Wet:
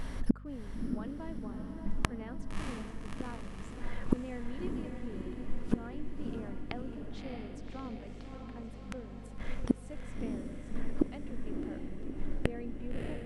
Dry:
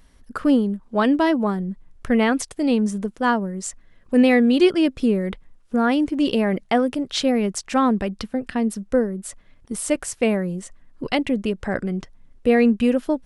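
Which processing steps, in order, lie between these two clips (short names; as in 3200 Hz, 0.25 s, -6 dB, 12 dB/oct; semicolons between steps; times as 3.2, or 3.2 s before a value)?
high shelf 3200 Hz -11.5 dB; notches 50/100/150/200 Hz; in parallel at -3 dB: compressor, threshold -28 dBFS, peak gain reduction 15.5 dB; on the sum: flipped gate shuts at -25 dBFS, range -40 dB; on a send: diffused feedback echo 0.621 s, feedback 65%, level -5 dB; on the sum: hum 50 Hz, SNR 13 dB; gain +12 dB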